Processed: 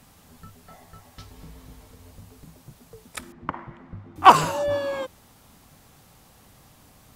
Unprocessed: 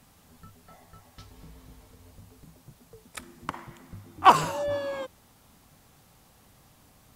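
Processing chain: 3.32–4.16 LPF 1900 Hz 12 dB/oct; gain +4.5 dB

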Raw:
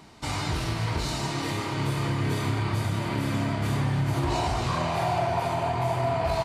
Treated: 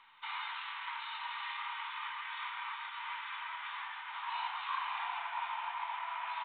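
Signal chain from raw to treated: steep high-pass 880 Hz 72 dB/oct; gain -5 dB; µ-law 64 kbps 8000 Hz

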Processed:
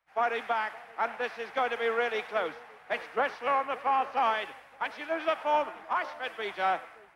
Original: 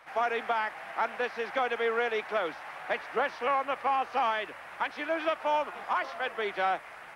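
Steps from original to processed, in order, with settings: split-band echo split 900 Hz, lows 0.573 s, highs 99 ms, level -14.5 dB; three-band expander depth 100%

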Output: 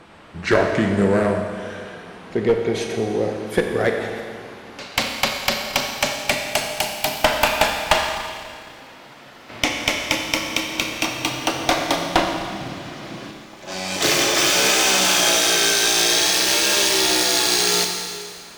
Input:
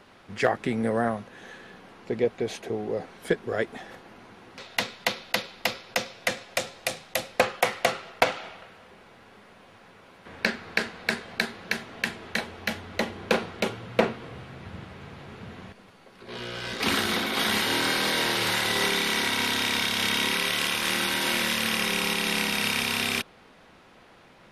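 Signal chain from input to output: speed glide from 83% -> 181%; one-sided clip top -20 dBFS; Schroeder reverb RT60 2 s, combs from 28 ms, DRR 3 dB; gain +7 dB

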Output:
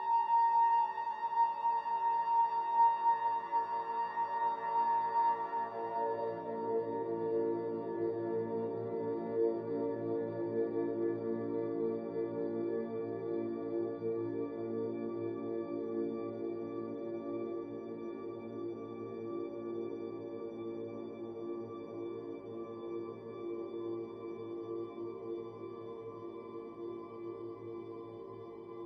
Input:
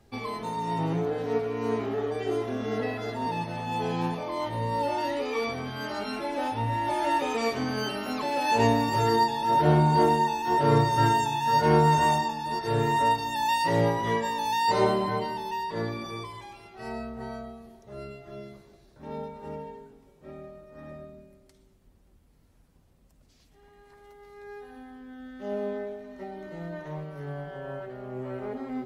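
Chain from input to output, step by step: Paulstretch 40×, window 0.50 s, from 15.58; hum 50 Hz, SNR 16 dB; band-pass sweep 1000 Hz -> 380 Hz, 5.29–6.96; on a send: reverb RT60 0.50 s, pre-delay 0.224 s, DRR 6 dB

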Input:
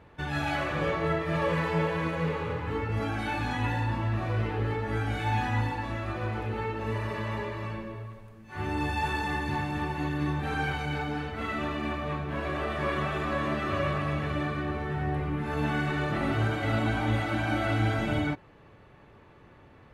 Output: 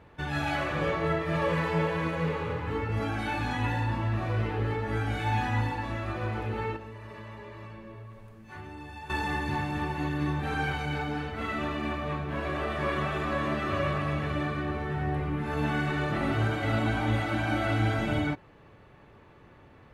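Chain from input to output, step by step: 6.76–9.1 compressor 6:1, threshold -41 dBFS, peak gain reduction 15 dB

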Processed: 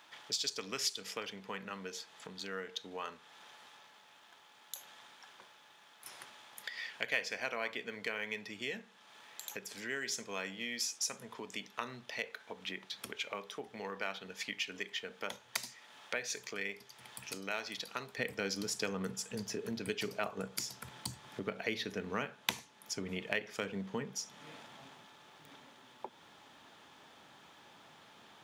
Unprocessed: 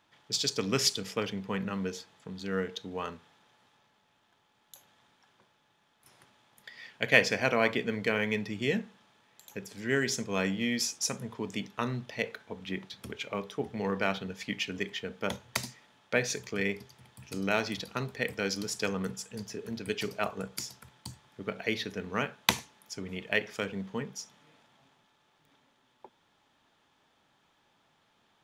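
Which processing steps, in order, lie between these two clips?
compressor 2.5:1, threshold -52 dBFS, peak gain reduction 23.5 dB; HPF 810 Hz 6 dB/oct, from 18.18 s 140 Hz; gain +11 dB

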